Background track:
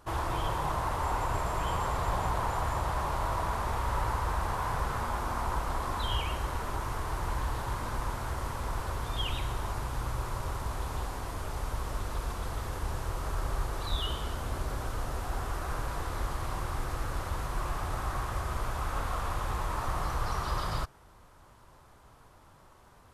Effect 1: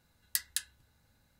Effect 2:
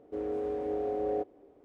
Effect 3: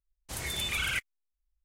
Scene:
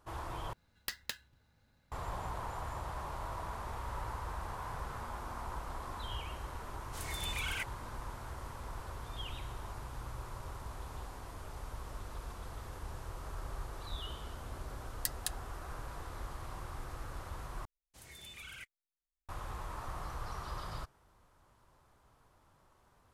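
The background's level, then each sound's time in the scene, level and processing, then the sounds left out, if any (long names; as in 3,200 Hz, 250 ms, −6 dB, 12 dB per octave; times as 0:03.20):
background track −10 dB
0:00.53: overwrite with 1 −1 dB + running median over 5 samples
0:06.64: mix in 3 −7.5 dB
0:14.70: mix in 1 −10 dB + transient designer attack +6 dB, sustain −2 dB
0:17.65: overwrite with 3 −18 dB
not used: 2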